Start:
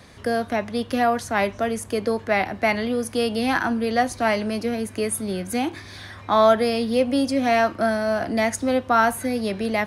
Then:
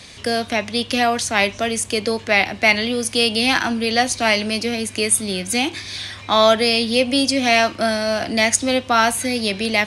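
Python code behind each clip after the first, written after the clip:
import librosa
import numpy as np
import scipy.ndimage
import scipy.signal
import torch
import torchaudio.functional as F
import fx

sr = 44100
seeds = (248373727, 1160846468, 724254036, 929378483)

y = fx.band_shelf(x, sr, hz=4600.0, db=12.0, octaves=2.4)
y = y * 10.0 ** (1.5 / 20.0)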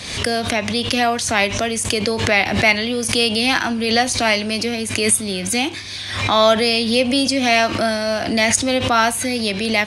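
y = fx.pre_swell(x, sr, db_per_s=54.0)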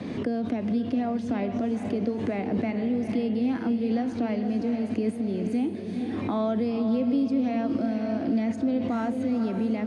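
y = fx.bandpass_q(x, sr, hz=260.0, q=2.0)
y = fx.echo_diffused(y, sr, ms=477, feedback_pct=45, wet_db=-8.0)
y = fx.band_squash(y, sr, depth_pct=70)
y = y * 10.0 ** (-2.0 / 20.0)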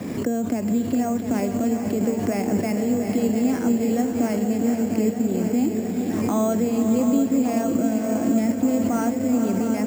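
y = fx.echo_swing(x, sr, ms=1166, ratio=1.5, feedback_pct=59, wet_db=-9)
y = np.repeat(scipy.signal.resample_poly(y, 1, 6), 6)[:len(y)]
y = y * 10.0 ** (4.0 / 20.0)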